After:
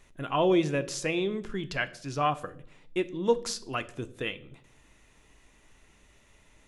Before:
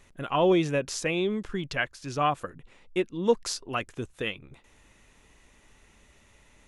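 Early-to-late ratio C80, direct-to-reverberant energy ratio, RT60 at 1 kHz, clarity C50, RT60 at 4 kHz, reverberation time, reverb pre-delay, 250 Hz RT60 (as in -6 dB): 21.0 dB, 11.0 dB, 0.50 s, 18.5 dB, 0.50 s, 0.65 s, 3 ms, 1.0 s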